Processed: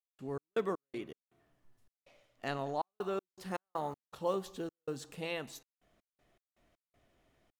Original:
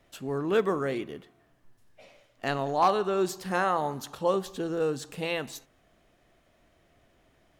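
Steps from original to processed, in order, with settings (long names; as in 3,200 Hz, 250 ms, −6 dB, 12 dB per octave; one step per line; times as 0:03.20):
0:02.84–0:05.12: one scale factor per block 7 bits
notch filter 1,600 Hz, Q 23
gate pattern ".x.x.x.xxx.xxxx" 80 BPM −60 dB
level −7.5 dB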